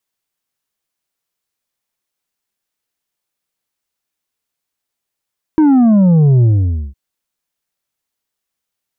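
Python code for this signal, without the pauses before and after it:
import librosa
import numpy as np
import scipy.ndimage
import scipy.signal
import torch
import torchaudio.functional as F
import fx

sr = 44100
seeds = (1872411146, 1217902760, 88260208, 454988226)

y = fx.sub_drop(sr, level_db=-7, start_hz=320.0, length_s=1.36, drive_db=5.5, fade_s=0.51, end_hz=65.0)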